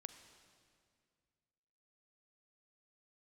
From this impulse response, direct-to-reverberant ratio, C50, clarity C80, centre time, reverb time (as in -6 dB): 9.5 dB, 9.5 dB, 10.5 dB, 21 ms, 2.1 s